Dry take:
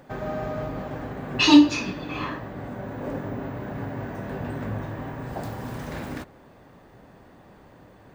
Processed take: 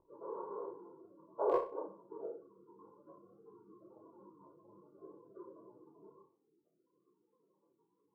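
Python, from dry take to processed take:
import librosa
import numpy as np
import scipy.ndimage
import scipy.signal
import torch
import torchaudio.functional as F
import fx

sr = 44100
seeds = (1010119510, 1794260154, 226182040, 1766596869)

p1 = scipy.signal.sosfilt(scipy.signal.butter(4, 680.0, 'highpass', fs=sr, output='sos'), x)
p2 = fx.spec_gate(p1, sr, threshold_db=-25, keep='weak')
p3 = scipy.signal.sosfilt(scipy.signal.butter(12, 1100.0, 'lowpass', fs=sr, output='sos'), p2)
p4 = p3 + 0.87 * np.pad(p3, (int(2.0 * sr / 1000.0), 0))[:len(p3)]
p5 = fx.rider(p4, sr, range_db=4, speed_s=0.5)
p6 = p4 + (p5 * 10.0 ** (-3.0 / 20.0))
p7 = np.clip(p6, -10.0 ** (-32.5 / 20.0), 10.0 ** (-32.5 / 20.0))
p8 = p7 + fx.room_flutter(p7, sr, wall_m=5.3, rt60_s=0.36, dry=0)
p9 = fx.detune_double(p8, sr, cents=48)
y = p9 * 10.0 ** (12.5 / 20.0)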